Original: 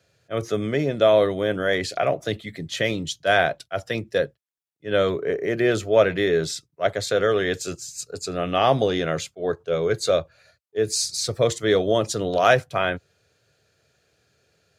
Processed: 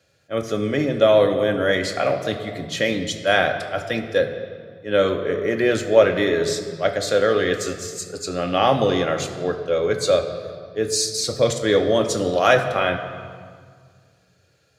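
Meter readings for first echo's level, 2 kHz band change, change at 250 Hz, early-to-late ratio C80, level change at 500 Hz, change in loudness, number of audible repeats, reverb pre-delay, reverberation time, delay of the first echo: no echo, +2.0 dB, +3.0 dB, 9.5 dB, +2.5 dB, +2.0 dB, no echo, 4 ms, 1.8 s, no echo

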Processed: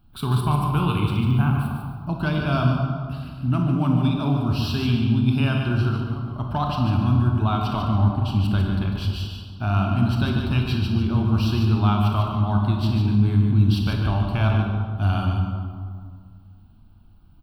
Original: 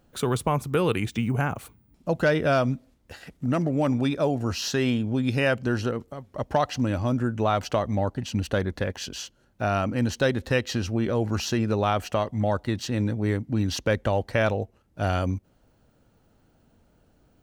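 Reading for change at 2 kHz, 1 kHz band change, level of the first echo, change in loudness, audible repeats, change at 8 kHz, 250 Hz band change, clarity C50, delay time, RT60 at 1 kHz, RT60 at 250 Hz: -2.5 dB, +1.5 dB, -7.0 dB, +4.0 dB, 1, under -10 dB, +4.0 dB, 1.0 dB, 147 ms, 1.9 s, 2.2 s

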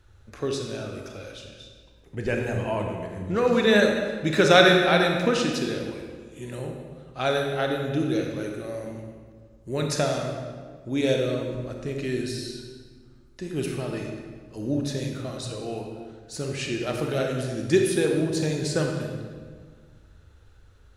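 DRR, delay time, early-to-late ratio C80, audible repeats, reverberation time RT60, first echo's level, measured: 1.5 dB, no echo, 4.5 dB, no echo, 1.7 s, no echo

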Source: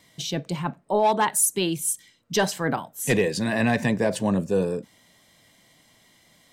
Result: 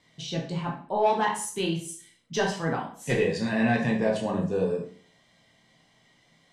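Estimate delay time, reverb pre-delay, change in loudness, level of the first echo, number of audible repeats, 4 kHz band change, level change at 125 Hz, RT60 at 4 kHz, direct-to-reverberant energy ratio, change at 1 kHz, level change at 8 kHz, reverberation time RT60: no echo, 10 ms, -3.0 dB, no echo, no echo, -4.5 dB, -2.5 dB, 0.45 s, -1.5 dB, -2.5 dB, -12.0 dB, 0.45 s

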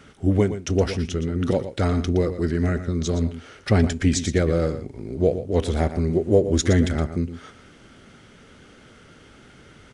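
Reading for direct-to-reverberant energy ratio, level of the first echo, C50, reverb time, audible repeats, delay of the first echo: no reverb, -11.5 dB, no reverb, no reverb, 1, 117 ms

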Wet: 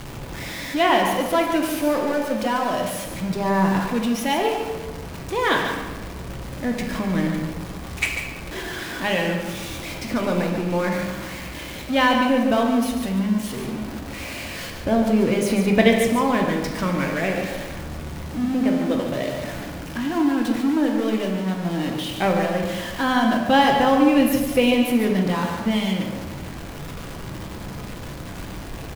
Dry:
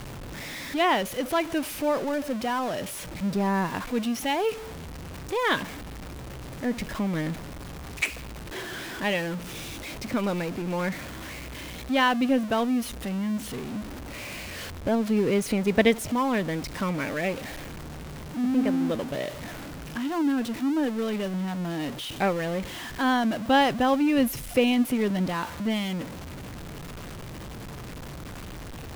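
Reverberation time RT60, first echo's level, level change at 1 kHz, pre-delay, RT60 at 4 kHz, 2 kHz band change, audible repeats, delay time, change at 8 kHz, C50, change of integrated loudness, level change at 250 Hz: 1.4 s, -7.5 dB, +5.5 dB, 3 ms, 0.80 s, +5.0 dB, 1, 145 ms, +4.0 dB, 3.0 dB, +5.0 dB, +5.5 dB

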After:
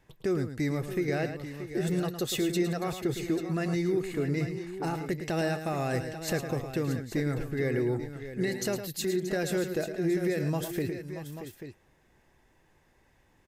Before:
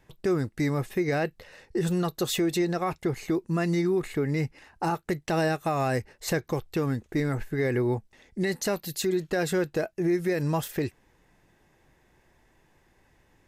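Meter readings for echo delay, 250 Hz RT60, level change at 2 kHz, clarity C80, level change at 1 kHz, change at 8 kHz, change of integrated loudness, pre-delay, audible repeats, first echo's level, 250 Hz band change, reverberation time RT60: 109 ms, no reverb, -3.0 dB, no reverb, -6.0 dB, -2.0 dB, -3.0 dB, no reverb, 3, -9.5 dB, -2.0 dB, no reverb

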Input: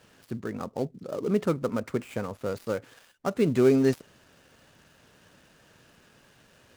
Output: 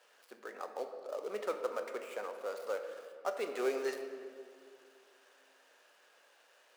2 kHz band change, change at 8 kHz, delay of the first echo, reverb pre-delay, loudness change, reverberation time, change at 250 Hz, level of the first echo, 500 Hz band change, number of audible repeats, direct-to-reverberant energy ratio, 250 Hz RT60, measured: -5.0 dB, -7.0 dB, no echo, 3 ms, -11.5 dB, 2.1 s, -21.5 dB, no echo, -9.5 dB, no echo, 5.0 dB, 2.7 s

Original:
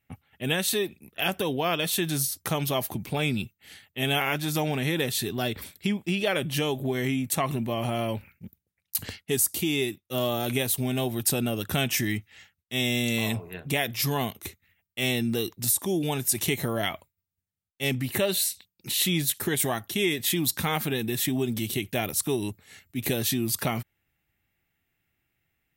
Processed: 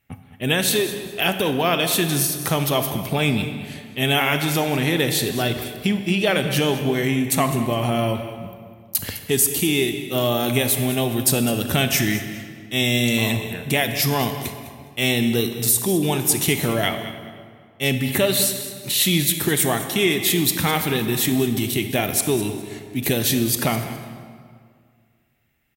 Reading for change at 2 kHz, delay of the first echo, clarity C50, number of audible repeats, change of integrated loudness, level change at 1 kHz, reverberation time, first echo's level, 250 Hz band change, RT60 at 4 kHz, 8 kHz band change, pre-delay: +7.0 dB, 206 ms, 7.5 dB, 2, +6.5 dB, +7.0 dB, 2.0 s, -14.5 dB, +7.0 dB, 1.4 s, +6.5 dB, 32 ms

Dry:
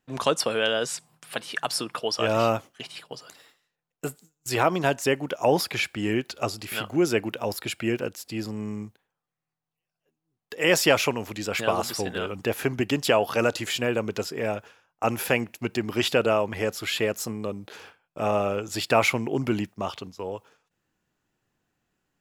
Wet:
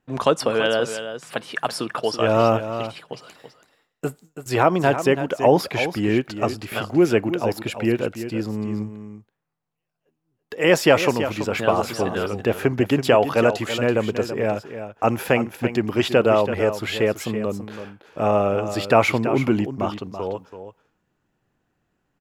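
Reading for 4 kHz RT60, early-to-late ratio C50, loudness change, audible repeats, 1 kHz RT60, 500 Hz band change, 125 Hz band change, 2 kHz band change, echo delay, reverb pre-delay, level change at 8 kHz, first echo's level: no reverb, no reverb, +4.5 dB, 1, no reverb, +6.0 dB, +6.5 dB, +2.5 dB, 331 ms, no reverb, -3.0 dB, -10.5 dB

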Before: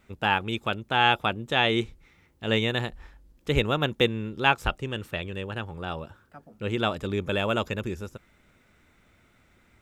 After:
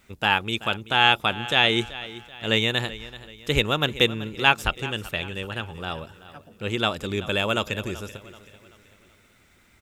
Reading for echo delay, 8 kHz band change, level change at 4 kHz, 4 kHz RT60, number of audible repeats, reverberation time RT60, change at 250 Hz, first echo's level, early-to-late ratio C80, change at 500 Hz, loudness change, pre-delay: 382 ms, +9.0 dB, +6.5 dB, no reverb, 3, no reverb, 0.0 dB, -16.5 dB, no reverb, +0.5 dB, +3.5 dB, no reverb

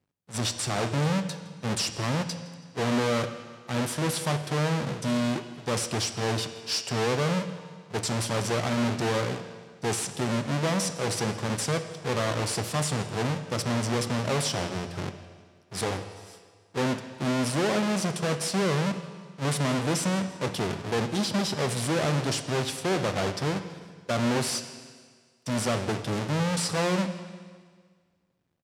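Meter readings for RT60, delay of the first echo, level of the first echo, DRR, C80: 1.7 s, 164 ms, -22.0 dB, 8.5 dB, 11.0 dB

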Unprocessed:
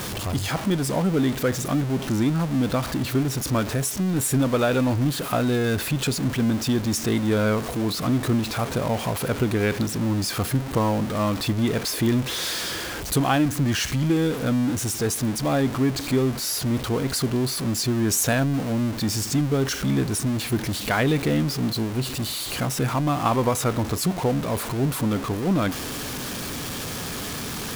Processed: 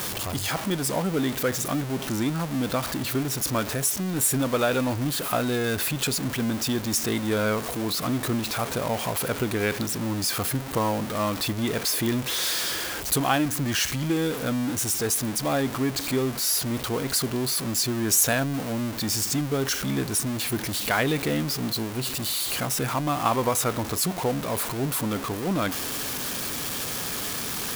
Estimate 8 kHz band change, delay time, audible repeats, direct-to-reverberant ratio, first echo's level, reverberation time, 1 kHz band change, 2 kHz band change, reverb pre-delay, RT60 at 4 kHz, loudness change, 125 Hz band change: +2.5 dB, no echo, no echo, no reverb, no echo, no reverb, -1.0 dB, 0.0 dB, no reverb, no reverb, -1.5 dB, -6.0 dB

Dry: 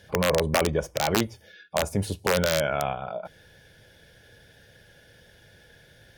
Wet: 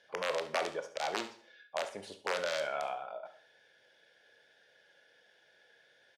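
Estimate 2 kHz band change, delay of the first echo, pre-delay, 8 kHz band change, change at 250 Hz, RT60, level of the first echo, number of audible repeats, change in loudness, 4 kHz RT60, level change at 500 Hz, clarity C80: -8.5 dB, 70 ms, 12 ms, -14.5 dB, -20.0 dB, 0.55 s, -14.5 dB, 1, -10.5 dB, 0.50 s, -10.5 dB, 16.0 dB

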